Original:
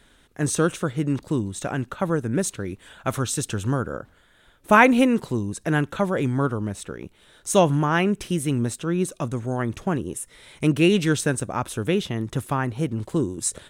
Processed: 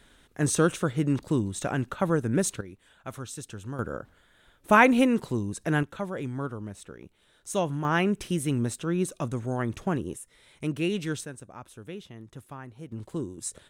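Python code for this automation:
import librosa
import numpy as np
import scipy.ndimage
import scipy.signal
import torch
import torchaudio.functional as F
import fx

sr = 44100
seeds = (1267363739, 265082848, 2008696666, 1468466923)

y = fx.gain(x, sr, db=fx.steps((0.0, -1.5), (2.61, -13.0), (3.79, -3.5), (5.83, -10.0), (7.85, -3.5), (10.16, -10.0), (11.25, -17.5), (12.92, -9.5)))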